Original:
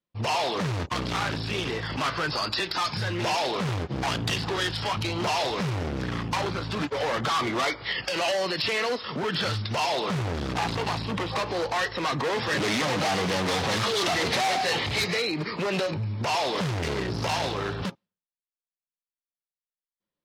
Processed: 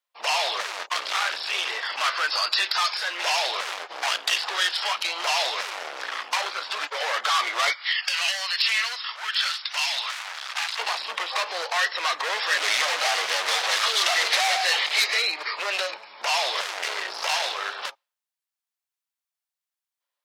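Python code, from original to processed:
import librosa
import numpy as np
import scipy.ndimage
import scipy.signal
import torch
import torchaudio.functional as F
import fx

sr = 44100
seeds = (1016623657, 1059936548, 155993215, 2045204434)

y = fx.highpass(x, sr, hz=1400.0, slope=12, at=(7.73, 10.79))
y = scipy.signal.sosfilt(scipy.signal.butter(4, 690.0, 'highpass', fs=sr, output='sos'), y)
y = fx.dynamic_eq(y, sr, hz=880.0, q=1.7, threshold_db=-42.0, ratio=4.0, max_db=-6)
y = y * librosa.db_to_amplitude(6.0)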